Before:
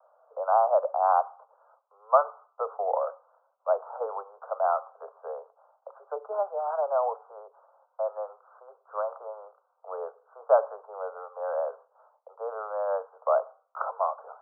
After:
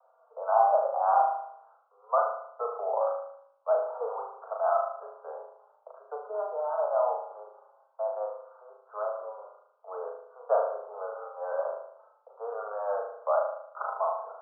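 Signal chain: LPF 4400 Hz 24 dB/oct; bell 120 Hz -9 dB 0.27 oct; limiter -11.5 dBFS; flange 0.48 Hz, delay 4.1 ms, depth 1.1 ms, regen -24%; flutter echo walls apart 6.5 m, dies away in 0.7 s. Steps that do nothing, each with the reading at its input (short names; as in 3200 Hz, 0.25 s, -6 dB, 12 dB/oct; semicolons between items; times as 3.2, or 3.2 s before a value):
LPF 4400 Hz: input band ends at 1500 Hz; bell 120 Hz: input band starts at 380 Hz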